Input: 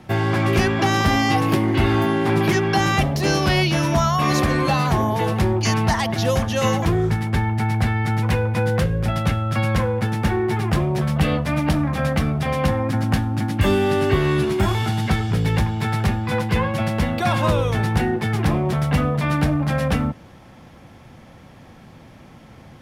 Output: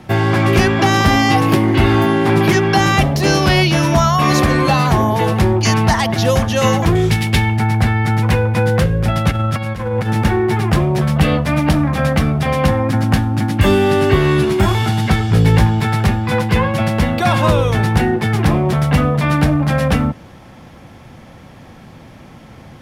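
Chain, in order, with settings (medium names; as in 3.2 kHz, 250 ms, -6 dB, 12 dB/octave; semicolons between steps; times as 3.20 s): 6.95–7.57 s: resonant high shelf 2 kHz +8.5 dB, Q 1.5; 9.31–10.25 s: compressor with a negative ratio -23 dBFS, ratio -0.5; 15.30–15.80 s: doubling 18 ms -5.5 dB; trim +5.5 dB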